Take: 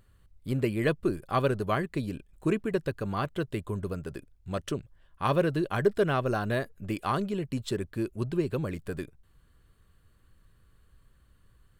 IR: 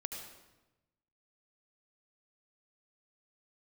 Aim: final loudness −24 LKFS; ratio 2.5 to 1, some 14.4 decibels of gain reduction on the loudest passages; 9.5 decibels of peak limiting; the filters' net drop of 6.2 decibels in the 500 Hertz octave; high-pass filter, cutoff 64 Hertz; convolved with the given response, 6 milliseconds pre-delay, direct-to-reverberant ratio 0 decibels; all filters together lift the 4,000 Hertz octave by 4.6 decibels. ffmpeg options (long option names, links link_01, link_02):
-filter_complex "[0:a]highpass=64,equalizer=frequency=500:width_type=o:gain=-8.5,equalizer=frequency=4000:width_type=o:gain=6,acompressor=threshold=-47dB:ratio=2.5,alimiter=level_in=13dB:limit=-24dB:level=0:latency=1,volume=-13dB,asplit=2[link_01][link_02];[1:a]atrim=start_sample=2205,adelay=6[link_03];[link_02][link_03]afir=irnorm=-1:irlink=0,volume=0.5dB[link_04];[link_01][link_04]amix=inputs=2:normalize=0,volume=20.5dB"